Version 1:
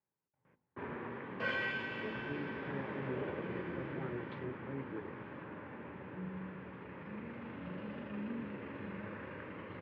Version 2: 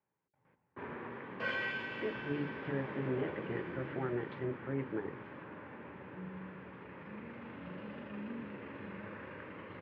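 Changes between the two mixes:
speech +8.0 dB; master: add bass shelf 340 Hz -3 dB

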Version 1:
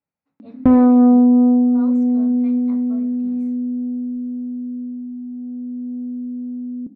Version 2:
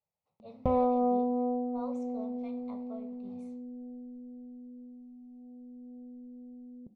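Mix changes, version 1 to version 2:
background -4.5 dB; master: add static phaser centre 670 Hz, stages 4

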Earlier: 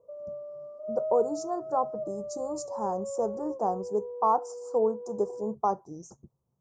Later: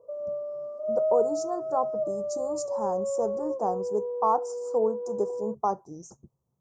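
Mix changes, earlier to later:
background +6.5 dB; master: add treble shelf 5.6 kHz +4 dB

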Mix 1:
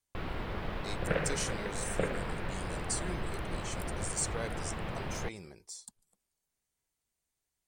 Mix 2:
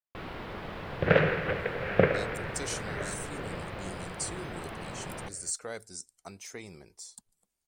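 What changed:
speech: entry +1.30 s; first sound: add bass shelf 85 Hz -11.5 dB; second sound +10.5 dB

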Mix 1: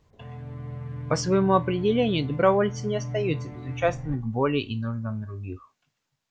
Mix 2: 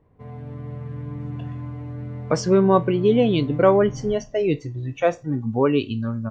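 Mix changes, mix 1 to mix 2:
speech: entry +1.20 s; master: add peaking EQ 330 Hz +6.5 dB 2.1 oct

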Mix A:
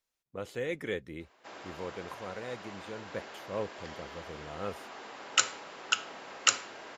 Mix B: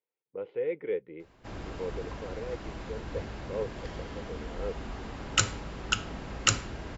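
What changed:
speech: add cabinet simulation 210–2200 Hz, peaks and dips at 240 Hz -10 dB, 460 Hz +9 dB, 660 Hz -8 dB, 1.2 kHz -10 dB, 1.7 kHz -10 dB; background: remove high-pass 540 Hz 12 dB/octave

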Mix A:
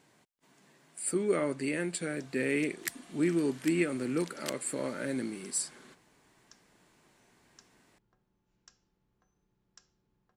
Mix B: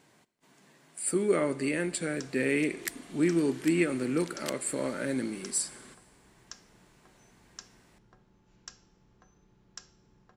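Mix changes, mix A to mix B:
first sound +11.5 dB; reverb: on, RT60 1.5 s

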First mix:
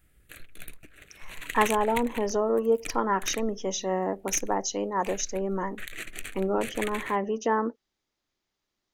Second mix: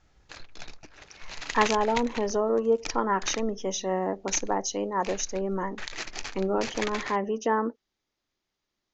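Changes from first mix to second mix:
background: remove static phaser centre 2.2 kHz, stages 4; master: add steep low-pass 7 kHz 96 dB/octave

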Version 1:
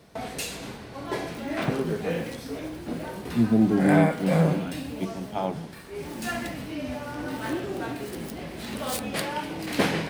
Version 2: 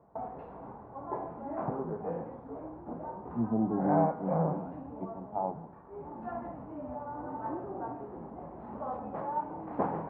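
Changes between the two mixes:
background: add peaking EQ 1.2 kHz +5 dB 0.71 oct; master: add four-pole ladder low-pass 1 kHz, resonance 55%

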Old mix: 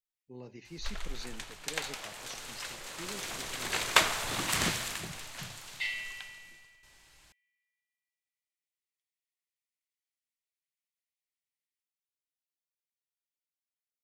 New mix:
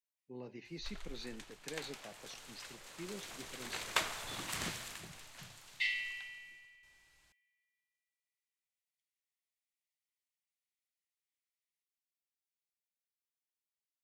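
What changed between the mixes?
speech: add band-pass 140–4200 Hz; first sound -10.0 dB

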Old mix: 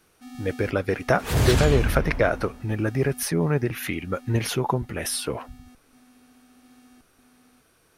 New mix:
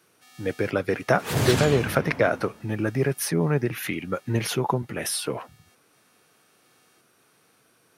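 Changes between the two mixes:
first sound: add high-pass 1.3 kHz 12 dB/octave; master: add high-pass 110 Hz 24 dB/octave

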